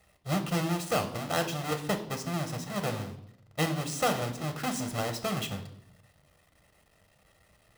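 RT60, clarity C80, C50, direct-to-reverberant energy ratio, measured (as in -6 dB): 0.70 s, 14.5 dB, 11.5 dB, 5.5 dB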